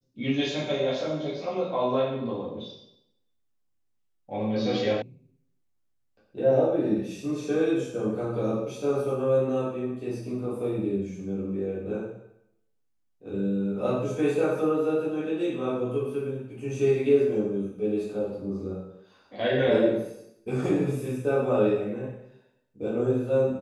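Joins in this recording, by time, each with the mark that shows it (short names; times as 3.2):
5.02 sound cut off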